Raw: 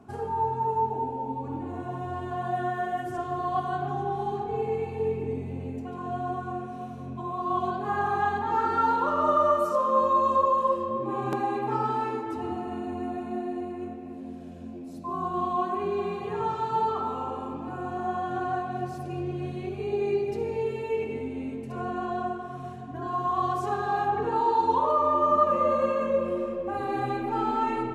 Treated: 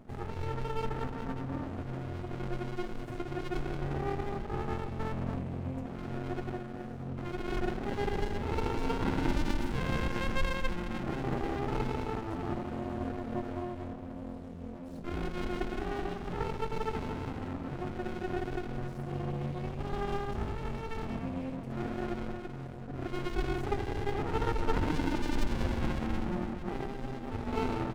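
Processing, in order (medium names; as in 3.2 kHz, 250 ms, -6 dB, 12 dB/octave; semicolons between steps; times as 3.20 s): 26.86–27.53 s: static phaser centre 350 Hz, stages 6; delay 398 ms -21.5 dB; sliding maximum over 65 samples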